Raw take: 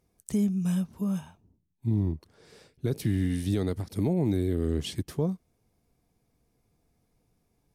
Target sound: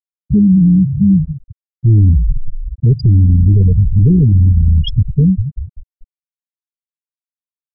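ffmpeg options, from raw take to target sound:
-filter_complex "[0:a]firequalizer=gain_entry='entry(120,0);entry(250,-17);entry(5300,1);entry(8300,-26)':delay=0.05:min_phase=1,asplit=3[a][b][c];[a]afade=t=out:st=4.51:d=0.02[d];[b]acompressor=threshold=-39dB:ratio=3,afade=t=in:st=4.51:d=0.02,afade=t=out:st=4.96:d=0.02[e];[c]afade=t=in:st=4.96:d=0.02[f];[d][e][f]amix=inputs=3:normalize=0,asplit=2[g][h];[h]asplit=6[i][j][k][l][m][n];[i]adelay=194,afreqshift=-42,volume=-15dB[o];[j]adelay=388,afreqshift=-84,volume=-19.3dB[p];[k]adelay=582,afreqshift=-126,volume=-23.6dB[q];[l]adelay=776,afreqshift=-168,volume=-27.9dB[r];[m]adelay=970,afreqshift=-210,volume=-32.2dB[s];[n]adelay=1164,afreqshift=-252,volume=-36.5dB[t];[o][p][q][r][s][t]amix=inputs=6:normalize=0[u];[g][u]amix=inputs=2:normalize=0,asoftclip=type=tanh:threshold=-28.5dB,tremolo=f=110:d=0.4,afftfilt=real='re*gte(hypot(re,im),0.02)':imag='im*gte(hypot(re,im),0.02)':win_size=1024:overlap=0.75,alimiter=level_in=36dB:limit=-1dB:release=50:level=0:latency=1,volume=-3dB"

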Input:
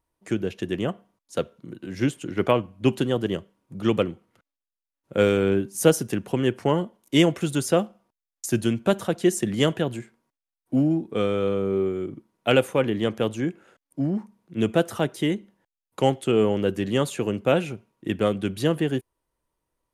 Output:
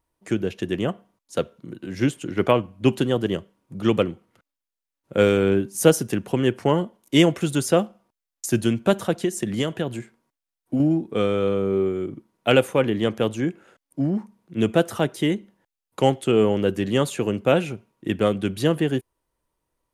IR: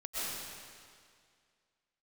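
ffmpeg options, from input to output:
-filter_complex "[0:a]asettb=1/sr,asplit=3[a][b][c];[a]atrim=end=9.164[d];[b]atrim=start=9.16:end=10.8,asetpts=PTS-STARTPTS,afade=t=in:d=0.004:c=qsin,afade=t=out:st=1.636:d=0.004:c=qsin,acompressor=threshold=-22dB:ratio=6[e];[c]atrim=start=10.796[f];[d][e]acrossfade=d=0.004:c1=hsin:c2=qsin[g];[g][f]acrossfade=d=0.004:c1=qsin:c2=hsin,volume=2dB"

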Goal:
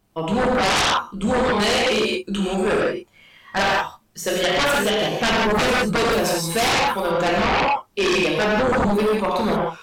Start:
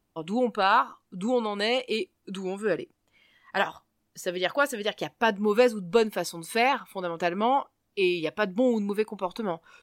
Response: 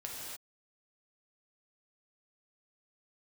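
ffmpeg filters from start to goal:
-filter_complex "[0:a]tremolo=f=150:d=0.462[a];[1:a]atrim=start_sample=2205,asetrate=70560,aresample=44100[b];[a][b]afir=irnorm=-1:irlink=0,aeval=exprs='0.168*sin(PI/2*5.62*val(0)/0.168)':c=same"

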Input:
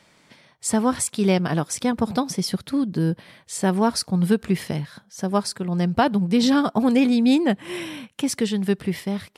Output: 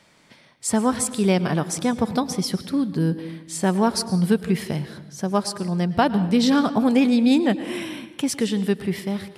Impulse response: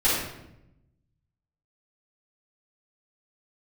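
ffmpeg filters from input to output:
-filter_complex "[0:a]asplit=2[a][b];[1:a]atrim=start_sample=2205,adelay=102[c];[b][c]afir=irnorm=-1:irlink=0,volume=-28.5dB[d];[a][d]amix=inputs=2:normalize=0"

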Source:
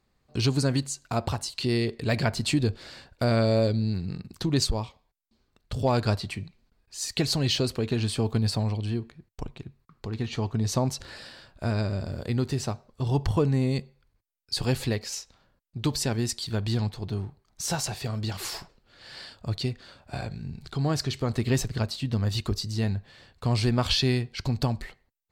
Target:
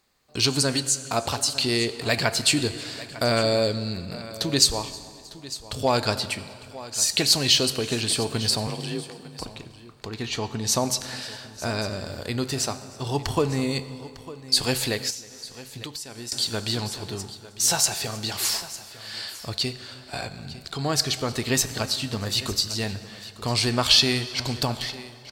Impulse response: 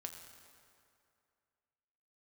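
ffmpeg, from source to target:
-filter_complex "[0:a]lowshelf=f=240:g=-12,aecho=1:1:902:0.15,asplit=2[a][b];[1:a]atrim=start_sample=2205[c];[b][c]afir=irnorm=-1:irlink=0,volume=1.5dB[d];[a][d]amix=inputs=2:normalize=0,asettb=1/sr,asplit=3[e][f][g];[e]atrim=end=8.674[h];[f]atrim=start=8.67:end=9.44,asetpts=PTS-STARTPTS,afade=t=in:d=0.004:c=qsin,afade=t=out:st=0.766:d=0.004:c=qsin,afreqshift=36[i];[g]atrim=start=9.436[j];[h][i]acrossfade=d=0.004:c1=hsin:c2=qsin[k];[k][j]acrossfade=d=0.004:c1=qsin:c2=hsin,highshelf=f=3.6k:g=8,asettb=1/sr,asplit=3[l][m][n];[l]atrim=end=15.104[o];[m]atrim=start=15.1:end=16.32,asetpts=PTS-STARTPTS,afade=t=in:d=0.004:c=qsin,afade=t=out:st=1.216:d=0.004:c=qsin,acompressor=threshold=-33dB:ratio=16[p];[n]atrim=start=16.316[q];[o][p]acrossfade=d=0.004:c1=hsin:c2=qsin[r];[r][q]acrossfade=d=0.004:c1=qsin:c2=hsin,asplit=2[s][t];[t]aecho=0:1:315|630|945:0.0631|0.0315|0.0158[u];[s][u]amix=inputs=2:normalize=0"

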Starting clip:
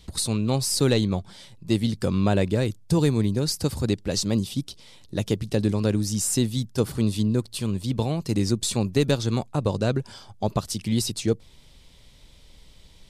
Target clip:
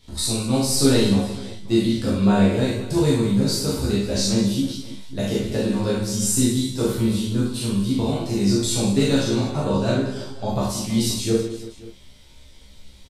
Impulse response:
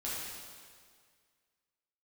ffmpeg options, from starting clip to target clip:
-filter_complex "[0:a]asplit=2[a][b];[b]adelay=15,volume=-5dB[c];[a][c]amix=inputs=2:normalize=0,aecho=1:1:40|100|190|325|527.5:0.631|0.398|0.251|0.158|0.1[d];[1:a]atrim=start_sample=2205,atrim=end_sample=3528[e];[d][e]afir=irnorm=-1:irlink=0"

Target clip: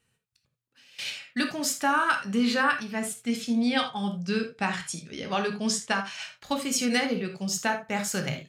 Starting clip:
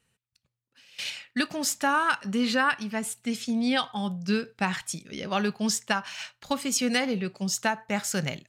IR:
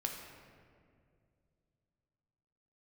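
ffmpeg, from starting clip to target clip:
-filter_complex "[0:a]asettb=1/sr,asplit=3[a][b][c];[a]atrim=end=3.684[d];[b]atrim=start=3.68:end=6.22,asetpts=PTS-STARTPTS,afade=t=in:d=0.004:c=qsin,afade=t=out:st=2.536:d=0.004:c=qsin,lowpass=f=11k:w=0.5412,lowpass=f=11k:w=1.3066[e];[c]atrim=start=6.216[f];[d][e]acrossfade=d=0.004:c1=hsin:c2=qsin[g];[g][f]acrossfade=d=0.004:c1=qsin:c2=hsin[h];[1:a]atrim=start_sample=2205,atrim=end_sample=3969[i];[h][i]afir=irnorm=-1:irlink=0"

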